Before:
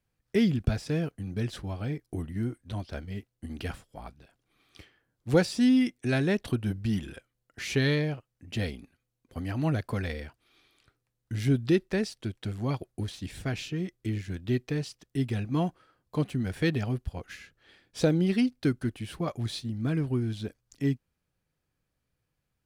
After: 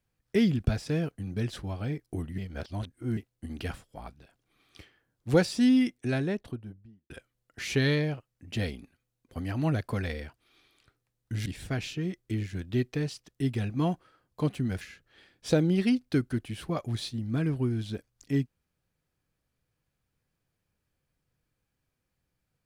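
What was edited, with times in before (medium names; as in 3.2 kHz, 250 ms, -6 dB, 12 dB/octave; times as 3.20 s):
2.38–3.17 s: reverse
5.74–7.10 s: studio fade out
11.46–13.21 s: delete
16.56–17.32 s: delete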